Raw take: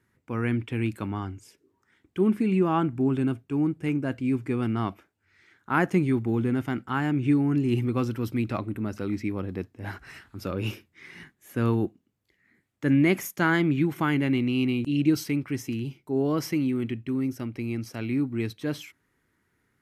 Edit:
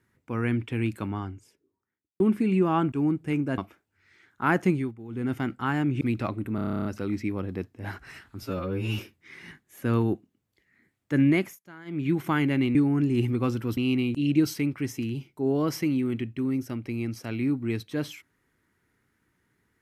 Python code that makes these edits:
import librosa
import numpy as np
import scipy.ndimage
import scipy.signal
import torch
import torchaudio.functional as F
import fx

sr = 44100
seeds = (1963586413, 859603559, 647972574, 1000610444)

y = fx.studio_fade_out(x, sr, start_s=0.99, length_s=1.21)
y = fx.edit(y, sr, fx.cut(start_s=2.92, length_s=0.56),
    fx.cut(start_s=4.14, length_s=0.72),
    fx.fade_down_up(start_s=5.97, length_s=0.65, db=-16.0, fade_s=0.26),
    fx.move(start_s=7.29, length_s=1.02, to_s=14.47),
    fx.stutter(start_s=8.85, slice_s=0.03, count=11),
    fx.stretch_span(start_s=10.42, length_s=0.28, factor=2.0),
    fx.fade_down_up(start_s=13.02, length_s=0.84, db=-23.5, fade_s=0.29), tone=tone)